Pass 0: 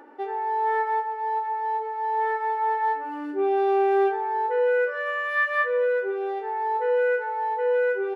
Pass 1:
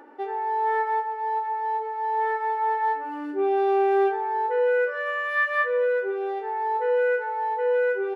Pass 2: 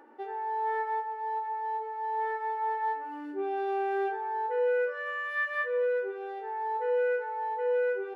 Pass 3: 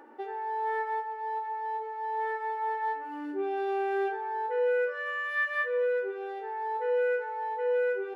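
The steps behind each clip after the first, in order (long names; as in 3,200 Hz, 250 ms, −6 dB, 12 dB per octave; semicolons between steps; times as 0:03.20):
no processing that can be heard
convolution reverb, pre-delay 4 ms, DRR 10.5 dB; level −7 dB
dynamic equaliser 760 Hz, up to −4 dB, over −40 dBFS, Q 0.74; level +3 dB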